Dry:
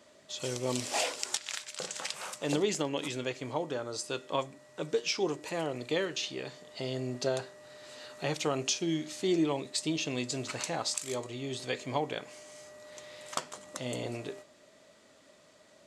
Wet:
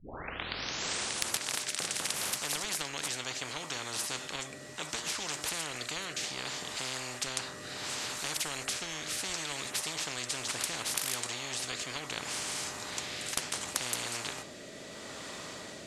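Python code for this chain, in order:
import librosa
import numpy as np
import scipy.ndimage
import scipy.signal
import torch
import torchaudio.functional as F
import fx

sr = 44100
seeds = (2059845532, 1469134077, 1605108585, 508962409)

y = fx.tape_start_head(x, sr, length_s=1.4)
y = fx.rotary(y, sr, hz=0.7)
y = fx.spectral_comp(y, sr, ratio=10.0)
y = F.gain(torch.from_numpy(y), 2.0).numpy()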